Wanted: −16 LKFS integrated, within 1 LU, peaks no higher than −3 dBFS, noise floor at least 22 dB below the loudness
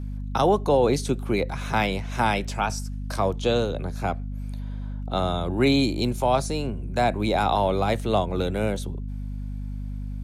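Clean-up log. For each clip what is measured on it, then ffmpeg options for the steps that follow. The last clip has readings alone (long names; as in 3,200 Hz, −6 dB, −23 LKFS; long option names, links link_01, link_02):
mains hum 50 Hz; hum harmonics up to 250 Hz; level of the hum −29 dBFS; integrated loudness −25.5 LKFS; sample peak −9.5 dBFS; target loudness −16.0 LKFS
→ -af "bandreject=frequency=50:width_type=h:width=4,bandreject=frequency=100:width_type=h:width=4,bandreject=frequency=150:width_type=h:width=4,bandreject=frequency=200:width_type=h:width=4,bandreject=frequency=250:width_type=h:width=4"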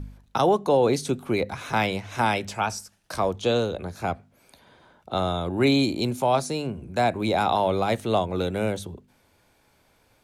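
mains hum none found; integrated loudness −25.0 LKFS; sample peak −10.0 dBFS; target loudness −16.0 LKFS
→ -af "volume=9dB,alimiter=limit=-3dB:level=0:latency=1"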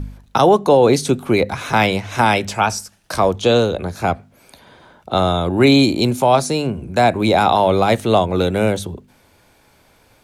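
integrated loudness −16.5 LKFS; sample peak −3.0 dBFS; background noise floor −54 dBFS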